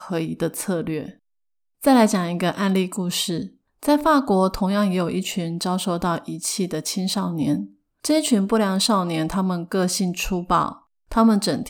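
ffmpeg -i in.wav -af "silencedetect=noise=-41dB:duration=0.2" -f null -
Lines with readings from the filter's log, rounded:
silence_start: 1.14
silence_end: 1.82 | silence_duration: 0.68
silence_start: 3.48
silence_end: 3.83 | silence_duration: 0.35
silence_start: 7.68
silence_end: 8.05 | silence_duration: 0.37
silence_start: 10.77
silence_end: 11.11 | silence_duration: 0.34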